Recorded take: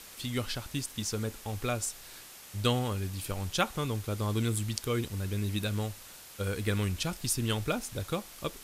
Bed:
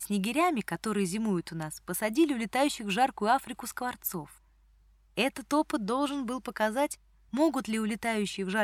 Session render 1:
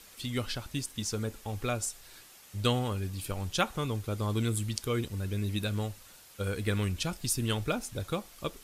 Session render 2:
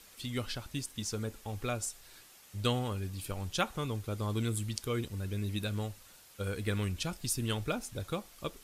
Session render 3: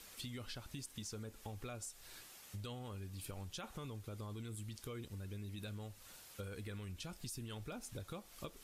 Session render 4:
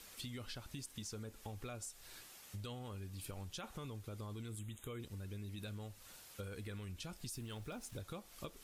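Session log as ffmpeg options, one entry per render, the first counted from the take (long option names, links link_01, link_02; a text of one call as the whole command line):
ffmpeg -i in.wav -af "afftdn=noise_reduction=6:noise_floor=-50" out.wav
ffmpeg -i in.wav -af "volume=-3dB" out.wav
ffmpeg -i in.wav -af "alimiter=level_in=3dB:limit=-24dB:level=0:latency=1:release=10,volume=-3dB,acompressor=threshold=-44dB:ratio=6" out.wav
ffmpeg -i in.wav -filter_complex "[0:a]asettb=1/sr,asplit=3[link_01][link_02][link_03];[link_01]atrim=end=4.594[link_04];[link_02]atrim=start=4.59:end=5,asetpts=PTS-STARTPTS,afade=type=in:duration=0.004:curve=qsin,afade=type=out:start_time=0.406:duration=0.004:curve=qsin,asuperstop=centerf=5000:order=20:qfactor=2[link_05];[link_03]atrim=start=4.996[link_06];[link_04][link_05]acrossfade=duration=0.004:curve1=hsin:curve2=qsin[link_07];[link_07][link_06]acrossfade=duration=0.004:curve1=qsin:curve2=hsin,asettb=1/sr,asplit=3[link_08][link_09][link_10];[link_08]atrim=end=7.334[link_11];[link_09]atrim=start=7.33:end=8,asetpts=PTS-STARTPTS,afade=type=in:duration=0.004:curve=qsin,afade=type=out:start_time=0.666:duration=0.004:curve=qsin,aeval=exprs='val(0)*gte(abs(val(0)),0.00112)':channel_layout=same[link_12];[link_10]atrim=start=7.996[link_13];[link_11][link_12]acrossfade=duration=0.004:curve1=hsin:curve2=qsin[link_14];[link_14][link_13]acrossfade=duration=0.004:curve1=qsin:curve2=hsin" out.wav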